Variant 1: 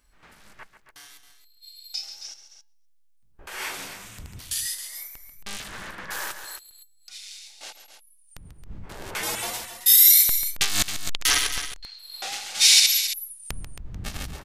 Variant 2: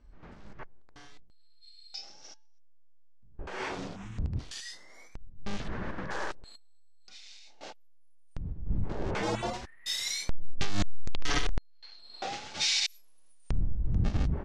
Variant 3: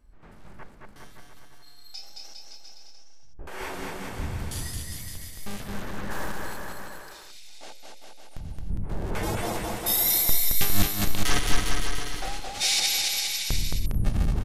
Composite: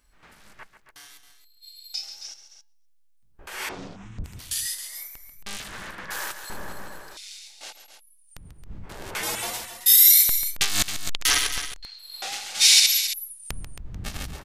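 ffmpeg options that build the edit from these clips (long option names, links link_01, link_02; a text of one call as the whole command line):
ffmpeg -i take0.wav -i take1.wav -i take2.wav -filter_complex "[0:a]asplit=3[link_01][link_02][link_03];[link_01]atrim=end=3.692[link_04];[1:a]atrim=start=3.688:end=4.242[link_05];[link_02]atrim=start=4.238:end=6.502[link_06];[2:a]atrim=start=6.498:end=7.172[link_07];[link_03]atrim=start=7.168[link_08];[link_04][link_05]acrossfade=duration=0.004:curve1=hsin:curve2=hsin[link_09];[link_09][link_06]acrossfade=duration=0.004:curve1=hsin:curve2=hsin[link_10];[link_10][link_07]acrossfade=duration=0.004:curve1=hsin:curve2=hsin[link_11];[link_11][link_08]acrossfade=duration=0.004:curve1=hsin:curve2=hsin" out.wav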